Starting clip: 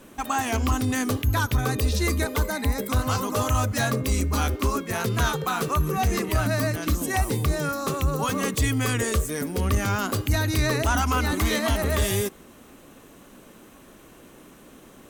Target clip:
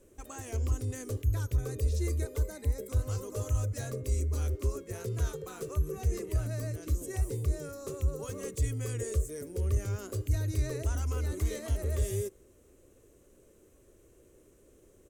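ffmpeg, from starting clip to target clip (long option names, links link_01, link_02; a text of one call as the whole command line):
ffmpeg -i in.wav -af "firequalizer=gain_entry='entry(100,0);entry(160,-13);entry(250,-15);entry(370,-2);entry(540,-5);entry(770,-19);entry(2100,-15);entry(3500,-17);entry(7100,-5);entry(15000,-13)':delay=0.05:min_phase=1,volume=-4.5dB" out.wav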